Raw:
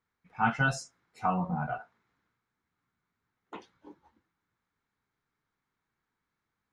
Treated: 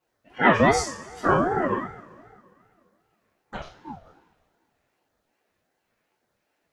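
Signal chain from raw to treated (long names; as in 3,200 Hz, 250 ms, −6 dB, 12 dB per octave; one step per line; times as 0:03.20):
auto-filter notch sine 1.8 Hz 450–2,400 Hz
coupled-rooms reverb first 0.4 s, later 2.2 s, from −20 dB, DRR −8 dB
ring modulator whose carrier an LFO sweeps 480 Hz, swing 30%, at 2.6 Hz
level +5 dB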